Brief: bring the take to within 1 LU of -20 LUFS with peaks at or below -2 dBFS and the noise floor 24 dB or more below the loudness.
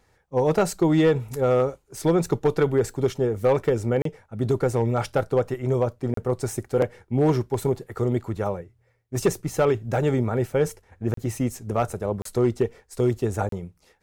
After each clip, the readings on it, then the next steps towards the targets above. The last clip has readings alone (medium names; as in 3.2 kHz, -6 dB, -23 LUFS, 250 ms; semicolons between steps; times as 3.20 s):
clipped samples 0.4%; clipping level -12.5 dBFS; dropouts 5; longest dropout 33 ms; loudness -24.5 LUFS; peak level -12.5 dBFS; loudness target -20.0 LUFS
-> clip repair -12.5 dBFS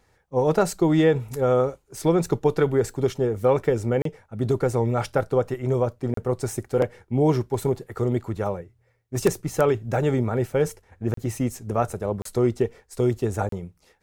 clipped samples 0.0%; dropouts 5; longest dropout 33 ms
-> interpolate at 4.02/6.14/11.14/12.22/13.49 s, 33 ms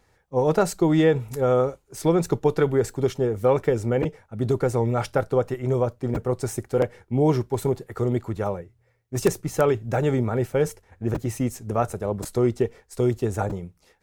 dropouts 0; loudness -24.0 LUFS; peak level -3.5 dBFS; loudness target -20.0 LUFS
-> trim +4 dB; peak limiter -2 dBFS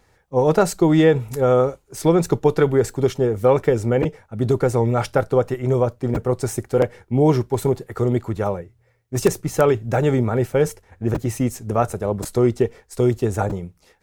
loudness -20.5 LUFS; peak level -2.0 dBFS; noise floor -60 dBFS